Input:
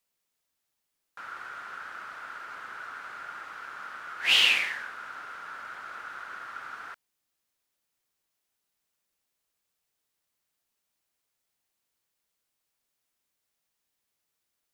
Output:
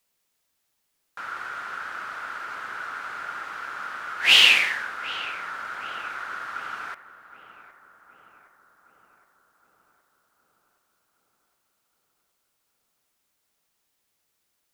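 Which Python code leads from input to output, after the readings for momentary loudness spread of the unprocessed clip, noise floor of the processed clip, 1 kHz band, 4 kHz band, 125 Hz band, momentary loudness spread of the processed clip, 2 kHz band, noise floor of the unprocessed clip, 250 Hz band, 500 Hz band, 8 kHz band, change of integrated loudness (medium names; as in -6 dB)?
19 LU, -75 dBFS, +6.5 dB, +6.5 dB, no reading, 19 LU, +6.5 dB, -82 dBFS, +6.5 dB, +7.0 dB, +6.5 dB, +6.0 dB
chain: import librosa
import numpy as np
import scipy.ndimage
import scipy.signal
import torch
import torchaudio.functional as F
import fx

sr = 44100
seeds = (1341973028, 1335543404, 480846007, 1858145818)

y = fx.echo_filtered(x, sr, ms=767, feedback_pct=66, hz=1800.0, wet_db=-14)
y = F.gain(torch.from_numpy(y), 6.5).numpy()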